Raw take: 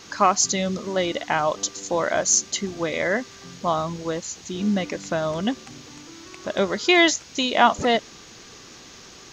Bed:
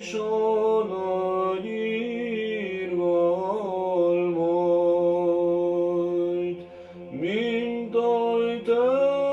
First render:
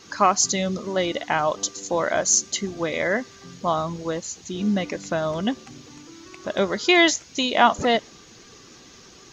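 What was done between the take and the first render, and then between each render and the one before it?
broadband denoise 6 dB, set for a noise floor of −45 dBFS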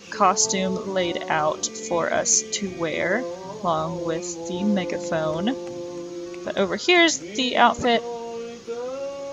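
mix in bed −9.5 dB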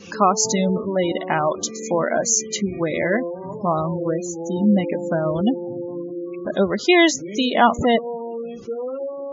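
gate on every frequency bin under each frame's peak −20 dB strong
low-shelf EQ 400 Hz +7.5 dB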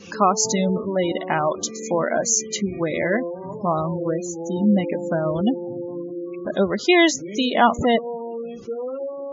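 level −1 dB

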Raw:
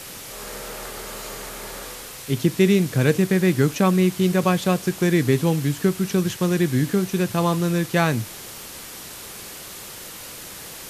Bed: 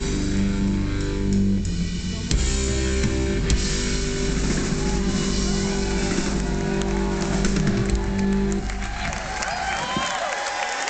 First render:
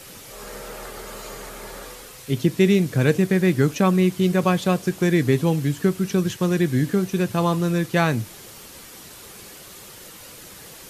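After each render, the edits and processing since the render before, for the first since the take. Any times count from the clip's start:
broadband denoise 6 dB, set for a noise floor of −38 dBFS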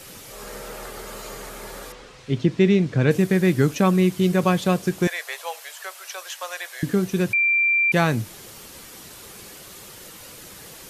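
0:01.92–0:03.11: high-frequency loss of the air 120 metres
0:05.07–0:06.83: Butterworth high-pass 580 Hz 48 dB per octave
0:07.33–0:07.92: beep over 2,360 Hz −16 dBFS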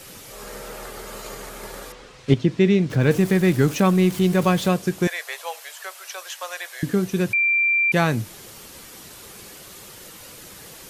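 0:01.11–0:02.34: transient designer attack +9 dB, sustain −1 dB
0:02.90–0:04.69: converter with a step at zero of −31.5 dBFS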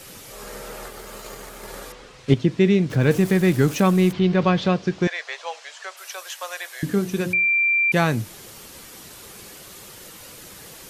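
0:00.88–0:01.68: mu-law and A-law mismatch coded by A
0:04.11–0:05.96: low-pass filter 4,300 Hz → 7,300 Hz 24 dB per octave
0:06.63–0:07.62: mains-hum notches 60/120/180/240/300/360/420/480/540/600 Hz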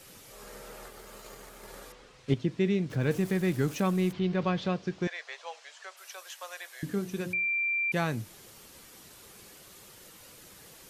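level −10 dB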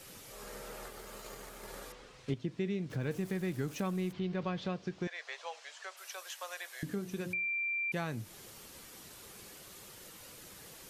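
downward compressor 2 to 1, threshold −38 dBFS, peak gain reduction 10 dB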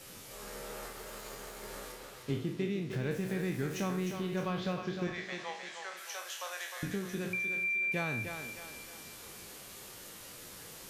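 peak hold with a decay on every bin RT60 0.49 s
on a send: feedback echo with a high-pass in the loop 306 ms, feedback 47%, high-pass 300 Hz, level −6 dB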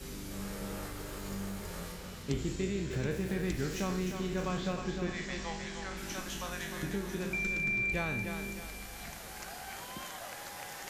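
mix in bed −20 dB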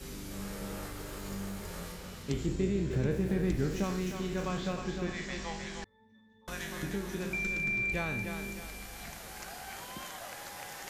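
0:02.46–0:03.84: tilt shelving filter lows +4.5 dB
0:05.84–0:06.48: resonances in every octave A, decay 0.77 s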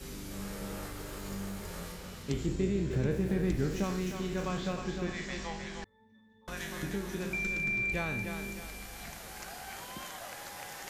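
0:05.47–0:06.57: high-shelf EQ 5,300 Hz −5.5 dB

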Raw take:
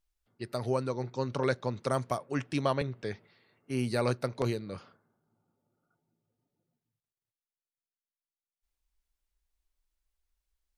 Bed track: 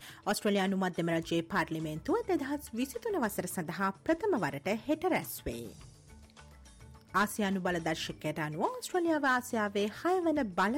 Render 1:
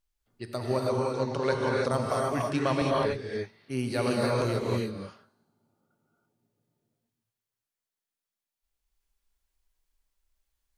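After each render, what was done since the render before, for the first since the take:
delay with a high-pass on its return 98 ms, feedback 63%, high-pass 4,600 Hz, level −22.5 dB
reverb whose tail is shaped and stops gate 350 ms rising, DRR −3 dB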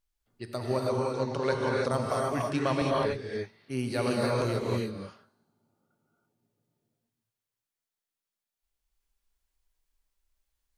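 level −1 dB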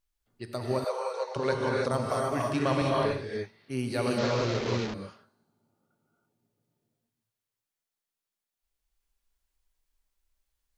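0:00.84–0:01.36: elliptic high-pass filter 460 Hz
0:02.26–0:03.25: flutter between parallel walls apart 10.3 metres, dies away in 0.46 s
0:04.18–0:04.94: linear delta modulator 32 kbit/s, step −28.5 dBFS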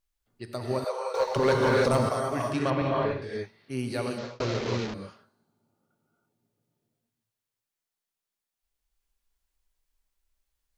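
0:01.14–0:02.09: leveller curve on the samples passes 2
0:02.70–0:03.22: low-pass filter 2,800 Hz
0:03.93–0:04.40: fade out linear

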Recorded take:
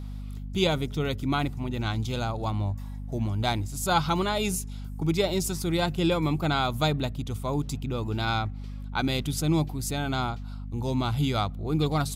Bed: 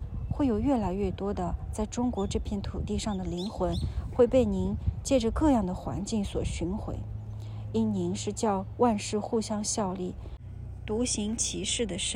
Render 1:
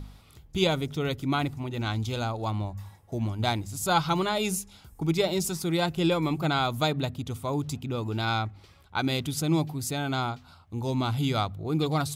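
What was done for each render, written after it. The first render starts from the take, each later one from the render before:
hum removal 50 Hz, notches 5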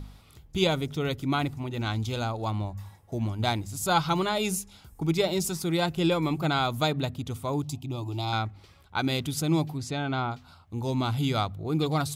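0:07.62–0:08.33: phaser with its sweep stopped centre 310 Hz, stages 8
0:09.77–0:10.30: low-pass filter 6,400 Hz → 2,400 Hz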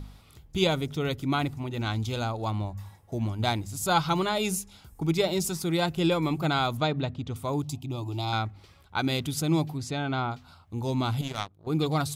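0:06.77–0:07.36: high-frequency loss of the air 120 metres
0:11.21–0:11.67: power curve on the samples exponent 2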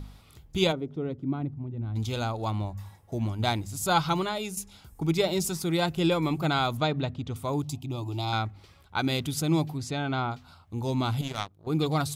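0:00.71–0:01.95: resonant band-pass 400 Hz → 110 Hz, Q 0.96
0:04.08–0:04.57: fade out, to −10 dB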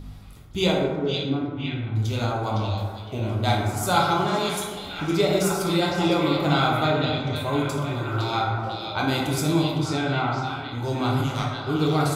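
echo through a band-pass that steps 510 ms, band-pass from 3,700 Hz, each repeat −0.7 octaves, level −2 dB
dense smooth reverb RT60 1.7 s, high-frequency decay 0.35×, DRR −3 dB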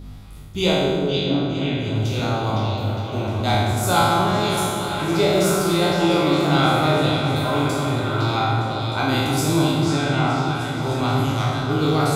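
peak hold with a decay on every bin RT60 1.25 s
echo whose low-pass opens from repeat to repeat 306 ms, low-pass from 400 Hz, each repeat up 2 octaves, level −6 dB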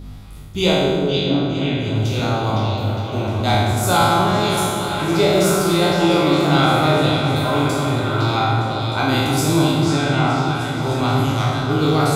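level +2.5 dB
brickwall limiter −3 dBFS, peak gain reduction 2 dB

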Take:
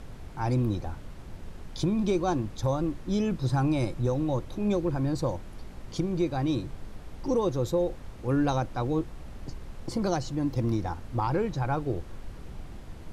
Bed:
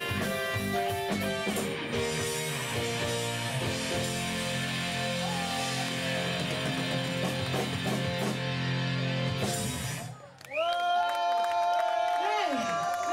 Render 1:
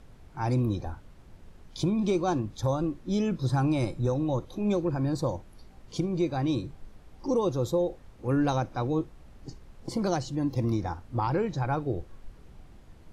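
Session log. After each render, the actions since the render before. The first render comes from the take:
noise reduction from a noise print 9 dB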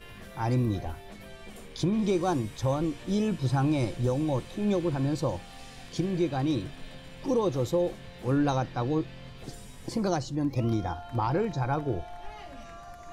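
mix in bed −16.5 dB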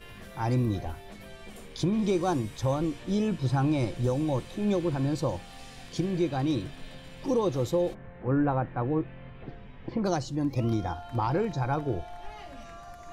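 0:02.99–0:03.96: high-shelf EQ 6,800 Hz −5 dB
0:07.93–0:10.04: low-pass filter 1,800 Hz → 2,900 Hz 24 dB per octave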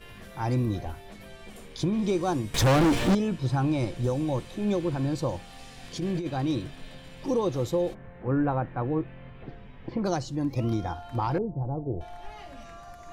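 0:02.54–0:03.15: leveller curve on the samples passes 5
0:05.83–0:06.30: compressor whose output falls as the input rises −29 dBFS
0:11.38–0:12.01: Bessel low-pass filter 500 Hz, order 6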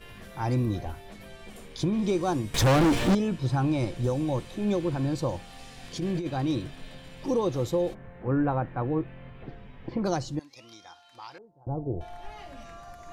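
0:10.39–0:11.67: resonant band-pass 5,000 Hz, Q 0.97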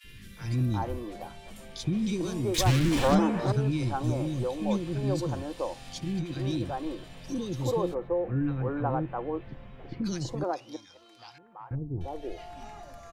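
three-band delay without the direct sound highs, lows, mids 40/370 ms, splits 330/1,700 Hz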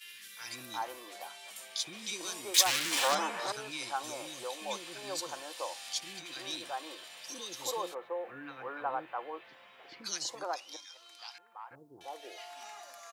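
high-pass filter 850 Hz 12 dB per octave
high-shelf EQ 3,100 Hz +8.5 dB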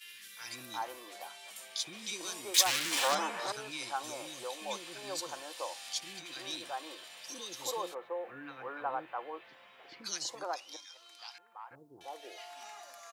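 level −1 dB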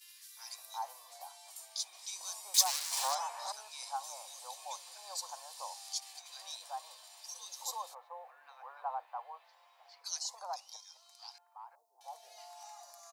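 Butterworth high-pass 710 Hz 36 dB per octave
flat-topped bell 2,100 Hz −12.5 dB

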